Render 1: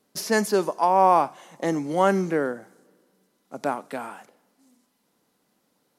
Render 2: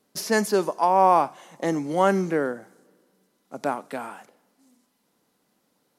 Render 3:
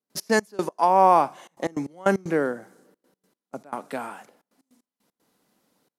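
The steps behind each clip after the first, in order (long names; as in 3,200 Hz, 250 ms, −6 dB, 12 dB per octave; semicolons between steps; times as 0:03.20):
no processing that can be heard
gate pattern ".x.x..x.xxxxxxx" 153 BPM −24 dB; level +1 dB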